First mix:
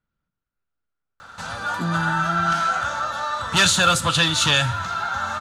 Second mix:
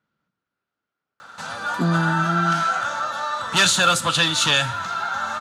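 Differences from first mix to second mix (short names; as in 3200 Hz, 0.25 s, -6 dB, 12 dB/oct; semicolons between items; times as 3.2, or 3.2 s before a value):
speech +7.5 dB; master: add HPF 170 Hz 12 dB/oct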